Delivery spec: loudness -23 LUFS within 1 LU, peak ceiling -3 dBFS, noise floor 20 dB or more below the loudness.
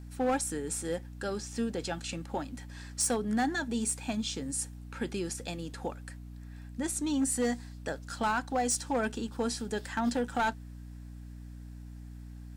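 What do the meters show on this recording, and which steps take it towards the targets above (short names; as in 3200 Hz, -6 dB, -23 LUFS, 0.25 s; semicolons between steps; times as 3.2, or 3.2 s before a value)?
clipped 0.8%; flat tops at -23.0 dBFS; hum 60 Hz; harmonics up to 300 Hz; hum level -43 dBFS; loudness -33.0 LUFS; peak -23.0 dBFS; loudness target -23.0 LUFS
-> clip repair -23 dBFS; de-hum 60 Hz, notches 5; gain +10 dB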